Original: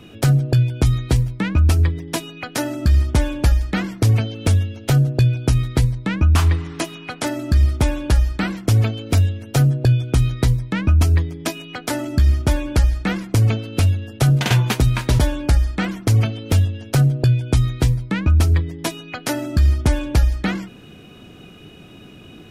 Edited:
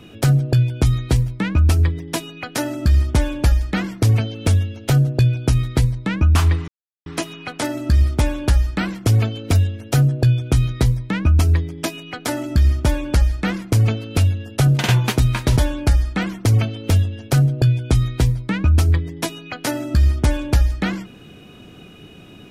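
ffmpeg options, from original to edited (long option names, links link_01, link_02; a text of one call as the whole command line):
ffmpeg -i in.wav -filter_complex "[0:a]asplit=2[link_01][link_02];[link_01]atrim=end=6.68,asetpts=PTS-STARTPTS,afade=type=out:start_time=6.676:duration=0.004:curve=hsin,apad=pad_dur=0.38[link_03];[link_02]atrim=start=6.68,asetpts=PTS-STARTPTS,afade=type=in:duration=0.004:curve=hsin[link_04];[link_03][link_04]concat=n=2:v=0:a=1" out.wav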